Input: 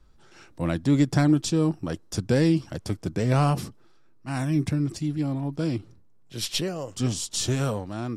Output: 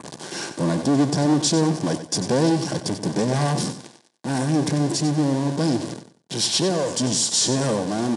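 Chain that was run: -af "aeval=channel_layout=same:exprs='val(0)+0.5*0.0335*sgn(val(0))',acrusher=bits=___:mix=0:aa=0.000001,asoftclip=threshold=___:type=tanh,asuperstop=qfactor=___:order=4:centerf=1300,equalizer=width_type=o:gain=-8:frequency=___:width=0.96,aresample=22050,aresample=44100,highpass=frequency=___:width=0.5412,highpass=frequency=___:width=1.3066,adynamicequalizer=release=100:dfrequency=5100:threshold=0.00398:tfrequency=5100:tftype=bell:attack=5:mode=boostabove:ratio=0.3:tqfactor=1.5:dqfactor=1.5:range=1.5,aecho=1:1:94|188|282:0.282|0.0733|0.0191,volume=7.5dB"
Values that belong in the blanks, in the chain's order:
7, -22.5dB, 5.8, 2400, 150, 150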